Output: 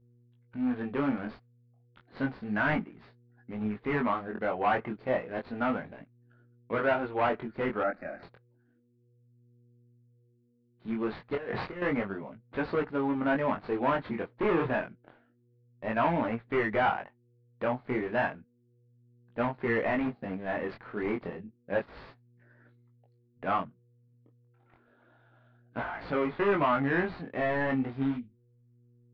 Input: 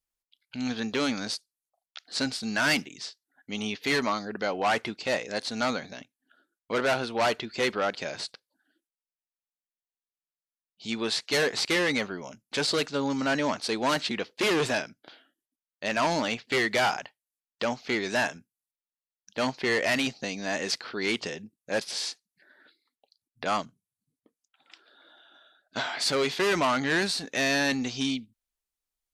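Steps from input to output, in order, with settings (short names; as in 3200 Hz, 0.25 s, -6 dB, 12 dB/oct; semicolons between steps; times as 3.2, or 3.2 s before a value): median filter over 15 samples; LPF 2800 Hz 24 dB/oct; low shelf 200 Hz +7 dB; 11.35–11.82 negative-ratio compressor -31 dBFS, ratio -0.5; dynamic EQ 1100 Hz, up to +3 dB, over -38 dBFS, Q 0.98; buzz 120 Hz, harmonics 4, -62 dBFS -8 dB/oct; chorus 0.31 Hz, delay 17 ms, depth 6.7 ms; 7.83–8.23 fixed phaser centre 650 Hz, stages 8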